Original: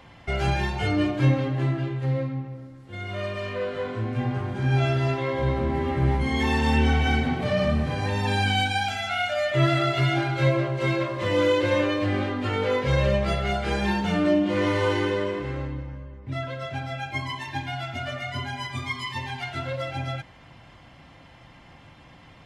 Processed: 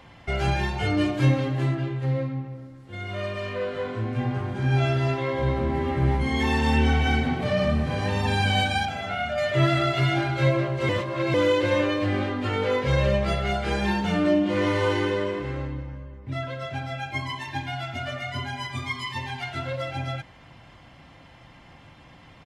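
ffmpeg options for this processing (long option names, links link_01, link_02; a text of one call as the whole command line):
ffmpeg -i in.wav -filter_complex "[0:a]asettb=1/sr,asplit=3[link_01][link_02][link_03];[link_01]atrim=end=0.974[link_04];[link_02]atrim=start=0.97:end=1.75,asetpts=PTS-STARTPTS,afade=type=in:duration=0.004:curve=qsin,afade=type=out:start_time=0.776:duration=0.004:curve=qsin,highshelf=frequency=5400:gain=8.5[link_05];[link_03]atrim=start=1.746[link_06];[link_04][link_05]acrossfade=duration=0.004:curve1=hsin:curve2=qsin[link_07];[link_07][link_06]acrossfade=duration=0.004:curve1=qsin:curve2=hsin,asplit=2[link_08][link_09];[link_09]afade=type=in:start_time=7.38:duration=0.01,afade=type=out:start_time=8.12:duration=0.01,aecho=0:1:510|1020|1530|2040|2550|3060|3570|4080|4590|5100:0.334965|0.234476|0.164133|0.114893|0.0804252|0.0562976|0.0394083|0.0275858|0.0193101|0.0135171[link_10];[link_08][link_10]amix=inputs=2:normalize=0,asettb=1/sr,asplit=3[link_11][link_12][link_13];[link_11]atrim=end=8.854[link_14];[link_12]atrim=start=8.85:end=9.38,asetpts=PTS-STARTPTS,afade=type=in:duration=0.004:curve=qsin,afade=type=out:start_time=0.526:duration=0.004:curve=qsin,highshelf=frequency=2400:gain=-10[link_15];[link_13]atrim=start=9.376[link_16];[link_14][link_15]acrossfade=duration=0.004:curve1=hsin:curve2=qsin[link_17];[link_17][link_16]acrossfade=duration=0.004:curve1=qsin:curve2=hsin,asplit=3[link_18][link_19][link_20];[link_18]atrim=end=10.892[link_21];[link_19]atrim=start=10.888:end=11.342,asetpts=PTS-STARTPTS,areverse[link_22];[link_20]atrim=start=11.338[link_23];[link_21][link_22]acrossfade=duration=0.004:curve1=hsin:curve2=hsin[link_24];[link_24][link_23]acrossfade=duration=0.004:curve1=hsin:curve2=hsin" out.wav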